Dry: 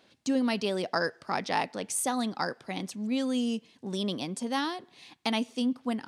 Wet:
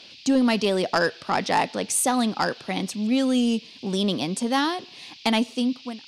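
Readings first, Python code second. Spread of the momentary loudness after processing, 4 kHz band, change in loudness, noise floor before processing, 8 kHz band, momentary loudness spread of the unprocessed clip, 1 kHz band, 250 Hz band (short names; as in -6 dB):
8 LU, +7.0 dB, +7.0 dB, -63 dBFS, +7.5 dB, 7 LU, +7.0 dB, +7.0 dB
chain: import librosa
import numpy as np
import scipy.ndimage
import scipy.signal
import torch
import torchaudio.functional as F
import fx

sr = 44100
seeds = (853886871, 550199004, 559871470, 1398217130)

y = fx.fade_out_tail(x, sr, length_s=0.62)
y = fx.fold_sine(y, sr, drive_db=4, ceiling_db=-12.5)
y = fx.dmg_noise_band(y, sr, seeds[0], low_hz=2400.0, high_hz=5100.0, level_db=-47.0)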